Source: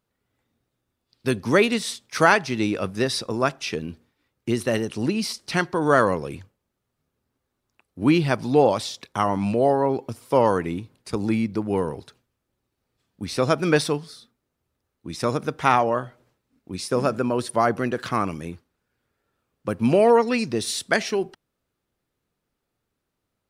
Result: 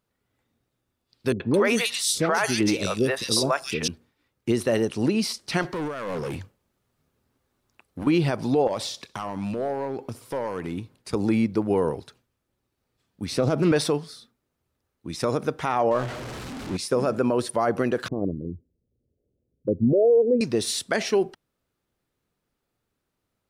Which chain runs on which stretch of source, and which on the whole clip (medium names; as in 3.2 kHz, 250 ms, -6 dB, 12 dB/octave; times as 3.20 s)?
1.32–3.88 s: treble shelf 3.2 kHz +10 dB + three bands offset in time lows, mids, highs 80/220 ms, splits 490/2800 Hz
5.62–8.07 s: compressor with a negative ratio -26 dBFS + hard clipper -27.5 dBFS
8.67–10.78 s: compression 4:1, threshold -26 dBFS + hard clipper -23.5 dBFS + feedback delay 64 ms, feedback 54%, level -22 dB
13.31–13.72 s: high-pass 120 Hz + bass shelf 270 Hz +12 dB + loudspeaker Doppler distortion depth 0.17 ms
15.91–16.77 s: jump at every zero crossing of -29 dBFS + distance through air 52 m
18.08–20.41 s: resonances exaggerated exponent 2 + inverse Chebyshev low-pass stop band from 1.2 kHz + peaking EQ 67 Hz +4.5 dB 1.4 oct
whole clip: dynamic bell 520 Hz, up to +5 dB, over -30 dBFS, Q 0.77; peak limiter -12.5 dBFS